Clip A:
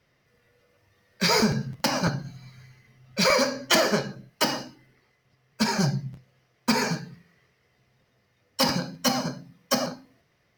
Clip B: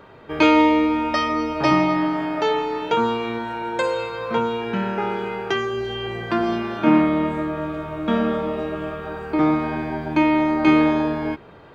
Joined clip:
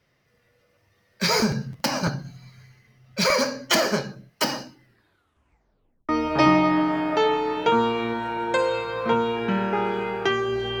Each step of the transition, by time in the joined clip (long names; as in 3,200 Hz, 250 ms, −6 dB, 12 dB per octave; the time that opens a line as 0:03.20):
clip A
0:04.83: tape stop 1.26 s
0:06.09: continue with clip B from 0:01.34